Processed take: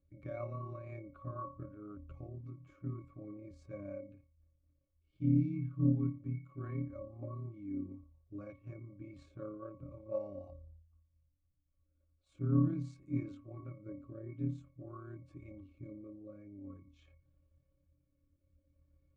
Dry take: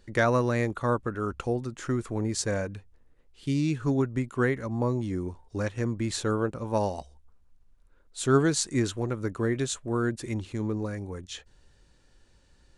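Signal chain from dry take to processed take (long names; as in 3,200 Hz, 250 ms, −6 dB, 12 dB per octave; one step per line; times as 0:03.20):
rotating-speaker cabinet horn 6 Hz, later 0.75 Hz, at 0:07.53
resonances in every octave C#, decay 0.24 s
time stretch by overlap-add 1.5×, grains 58 ms
level +3 dB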